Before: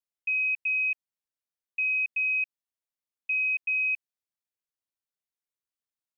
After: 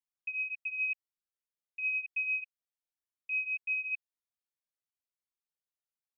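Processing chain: cascading flanger rising 0.96 Hz; gain -3 dB

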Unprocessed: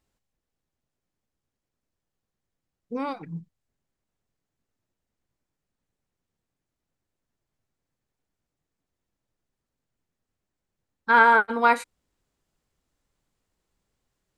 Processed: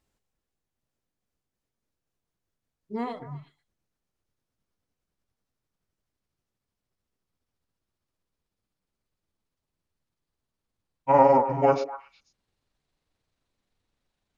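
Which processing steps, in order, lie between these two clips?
gliding pitch shift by -11.5 st starting unshifted; delay with a stepping band-pass 0.122 s, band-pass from 440 Hz, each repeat 1.4 oct, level -8 dB

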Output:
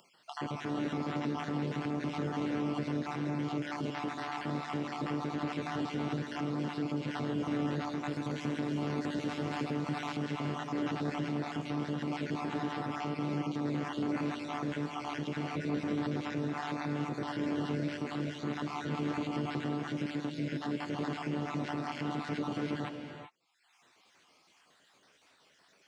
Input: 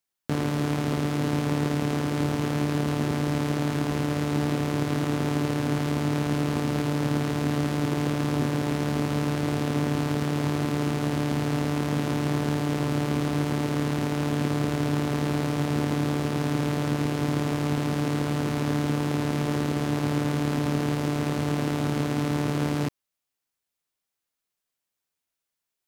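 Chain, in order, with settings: random spectral dropouts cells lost 44%; flange 0.3 Hz, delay 5.4 ms, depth 9.8 ms, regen -35%; limiter -27.5 dBFS, peak gain reduction 11 dB; HPF 160 Hz 12 dB/oct; air absorption 130 m; upward compressor, threshold -46 dBFS; 8.04–10.17 high shelf 7400 Hz +8 dB; non-linear reverb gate 0.42 s rising, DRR 6.5 dB; gain +3 dB

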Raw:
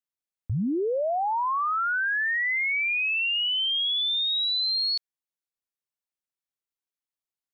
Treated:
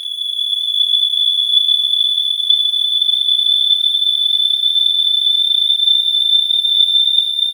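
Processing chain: Paulstretch 46×, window 0.25 s, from 3.96; AGC gain up to 8 dB; crossover distortion -40.5 dBFS; doubler 32 ms -3 dB; gain +2.5 dB

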